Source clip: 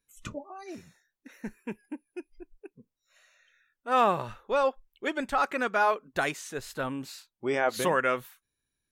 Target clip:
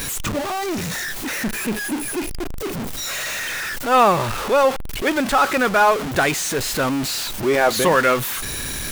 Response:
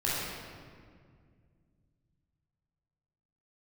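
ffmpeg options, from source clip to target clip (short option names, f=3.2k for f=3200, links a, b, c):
-af "aeval=exprs='val(0)+0.5*0.0398*sgn(val(0))':c=same,volume=7.5dB"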